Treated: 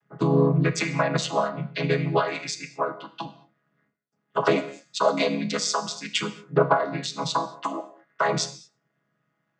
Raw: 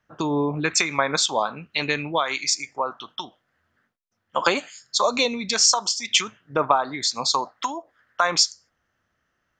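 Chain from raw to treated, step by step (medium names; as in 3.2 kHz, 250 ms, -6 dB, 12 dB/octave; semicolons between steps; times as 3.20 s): vocoder on a held chord minor triad, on C#3; gated-style reverb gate 250 ms falling, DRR 10 dB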